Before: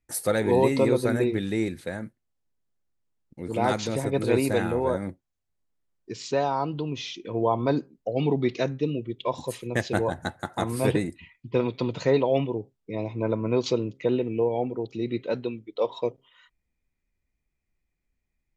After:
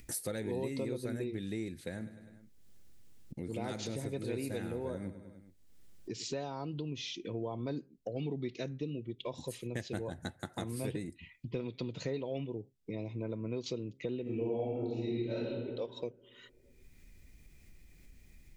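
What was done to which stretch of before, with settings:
1.80–6.34 s: feedback delay 101 ms, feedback 49%, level -15.5 dB
14.22–15.46 s: reverb throw, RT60 1.2 s, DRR -9 dB
whole clip: upward compressor, threshold -39 dBFS; peaking EQ 980 Hz -10 dB 1.6 oct; compression 3:1, threshold -40 dBFS; trim +1.5 dB

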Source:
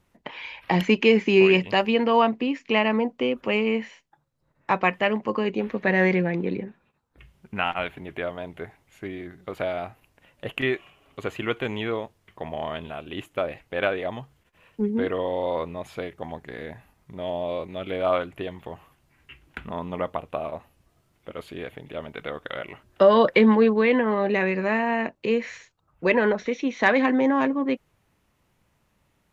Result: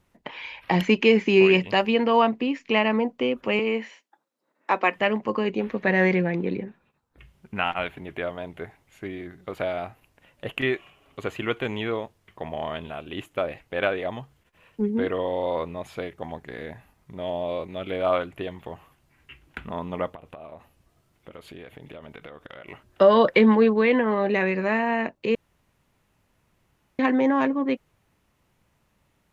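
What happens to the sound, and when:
3.59–4.96 s: steep high-pass 230 Hz
20.14–22.68 s: compression 12:1, threshold -37 dBFS
25.35–26.99 s: room tone

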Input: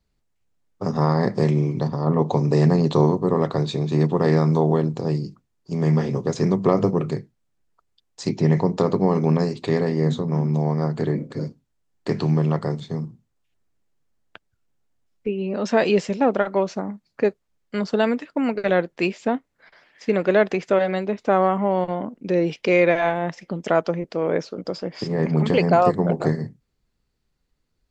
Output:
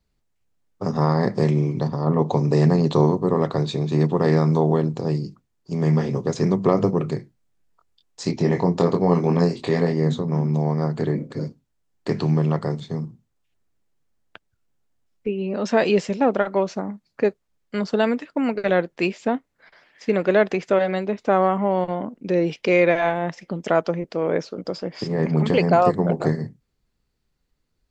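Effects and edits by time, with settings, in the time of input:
7.17–9.93 s: doubling 23 ms -4 dB

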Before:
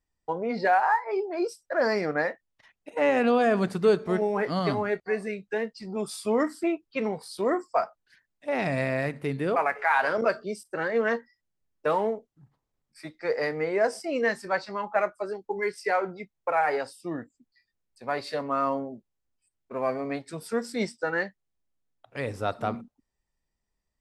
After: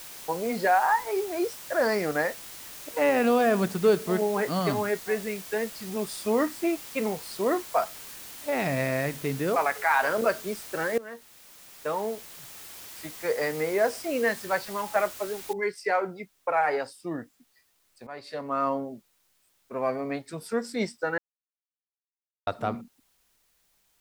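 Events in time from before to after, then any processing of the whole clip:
10.98–13.67 s: fade in equal-power, from -19 dB
15.53 s: noise floor step -43 dB -69 dB
18.07–18.65 s: fade in, from -14.5 dB
21.18–22.47 s: mute

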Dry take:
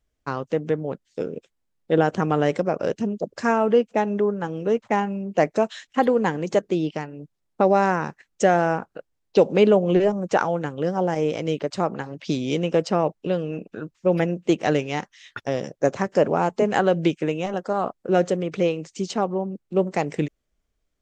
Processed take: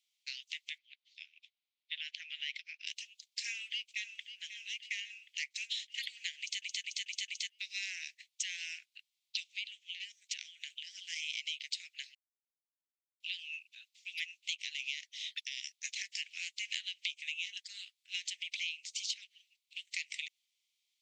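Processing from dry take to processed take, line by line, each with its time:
0.78–2.87 s: distance through air 210 m
3.47–4.32 s: echo throw 540 ms, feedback 65%, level -14.5 dB
6.40 s: stutter in place 0.22 s, 5 plays
9.46–10.91 s: compression 12:1, threshold -23 dBFS
12.15–13.20 s: mute
14.57–15.76 s: compression 2.5:1, threshold -24 dBFS
whole clip: steep high-pass 2.1 kHz 72 dB/octave; peaking EQ 3.7 kHz +8.5 dB 1 oct; compression 5:1, threshold -36 dBFS; trim +1 dB

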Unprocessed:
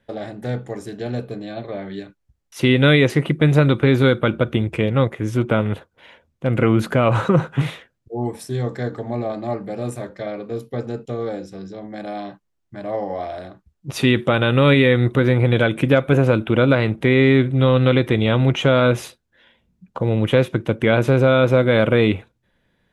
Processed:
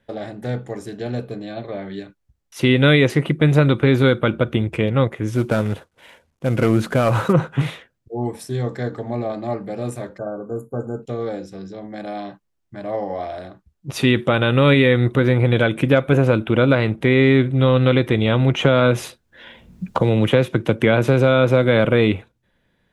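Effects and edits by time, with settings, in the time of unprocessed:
5.35–7.33 s: CVSD coder 64 kbps
10.18–11.03 s: brick-wall FIR band-stop 1.6–6.6 kHz
18.59–21.85 s: three bands compressed up and down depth 70%

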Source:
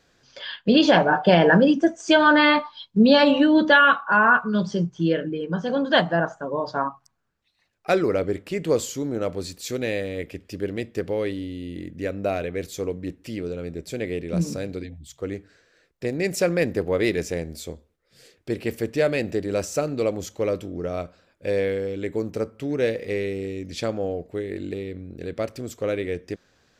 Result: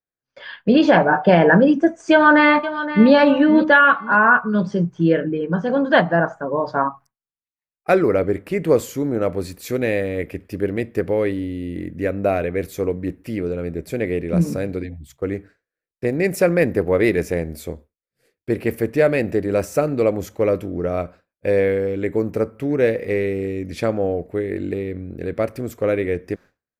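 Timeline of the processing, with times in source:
2.11–3.11 s: echo throw 520 ms, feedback 30%, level -12.5 dB
whole clip: expander -41 dBFS; high-order bell 4.8 kHz -9.5 dB; level rider gain up to 6 dB

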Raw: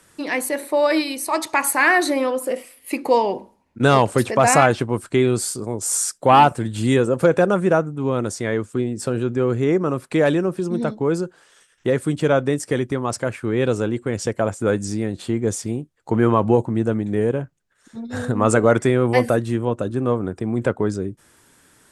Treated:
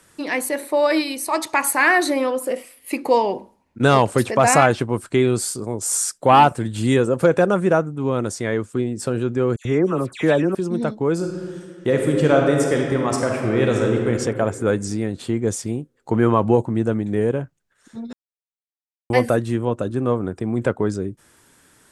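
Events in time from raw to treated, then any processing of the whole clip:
9.56–10.55 s: phase dispersion lows, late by 90 ms, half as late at 2.3 kHz
11.13–14.10 s: reverb throw, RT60 2.2 s, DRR 0.5 dB
18.13–19.10 s: mute

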